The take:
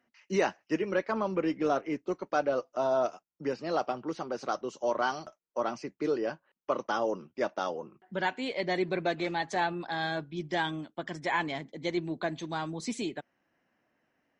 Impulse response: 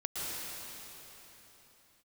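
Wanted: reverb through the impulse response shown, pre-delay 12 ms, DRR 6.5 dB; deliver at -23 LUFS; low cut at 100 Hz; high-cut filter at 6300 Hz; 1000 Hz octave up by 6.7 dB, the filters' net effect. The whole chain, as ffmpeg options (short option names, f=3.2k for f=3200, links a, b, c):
-filter_complex "[0:a]highpass=100,lowpass=6.3k,equalizer=f=1k:t=o:g=9,asplit=2[a][b];[1:a]atrim=start_sample=2205,adelay=12[c];[b][c]afir=irnorm=-1:irlink=0,volume=-11.5dB[d];[a][d]amix=inputs=2:normalize=0,volume=5dB"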